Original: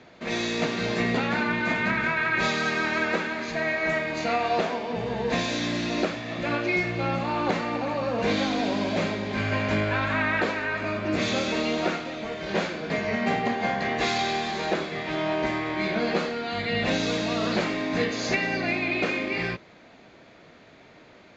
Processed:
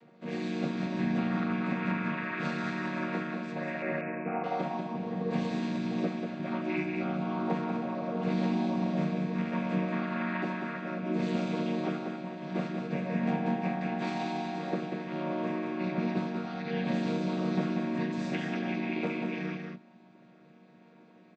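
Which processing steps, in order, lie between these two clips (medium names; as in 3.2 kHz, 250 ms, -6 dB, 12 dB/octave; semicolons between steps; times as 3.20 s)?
vocoder on a held chord minor triad, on D#3; 3.82–4.44 s: steep low-pass 2.6 kHz 96 dB/octave; delay 190 ms -5 dB; trim -5.5 dB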